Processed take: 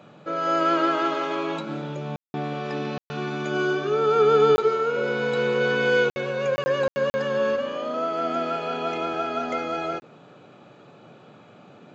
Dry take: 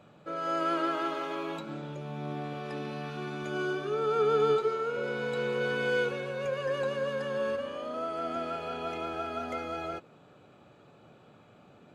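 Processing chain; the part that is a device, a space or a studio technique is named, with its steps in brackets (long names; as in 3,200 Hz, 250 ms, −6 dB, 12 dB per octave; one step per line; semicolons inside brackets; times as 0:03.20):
call with lost packets (high-pass filter 120 Hz 24 dB per octave; downsampling to 16,000 Hz; dropped packets bursts)
level +8 dB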